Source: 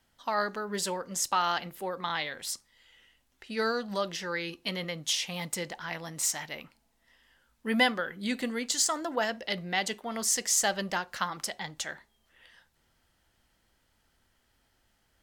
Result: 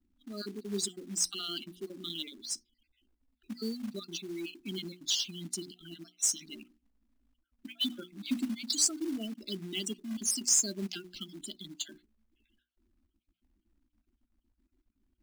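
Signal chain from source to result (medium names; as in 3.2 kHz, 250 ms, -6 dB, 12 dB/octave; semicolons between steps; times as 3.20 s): random holes in the spectrogram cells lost 34%; static phaser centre 500 Hz, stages 6; level-controlled noise filter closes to 1.5 kHz, open at -32.5 dBFS; Chebyshev band-stop 360–2300 Hz, order 2; treble shelf 2.9 kHz -4.5 dB; spectral gate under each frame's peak -15 dB strong; bass shelf 410 Hz -3 dB; hum notches 60/120/180/240/300/360 Hz; short-mantissa float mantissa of 2-bit; trim +8 dB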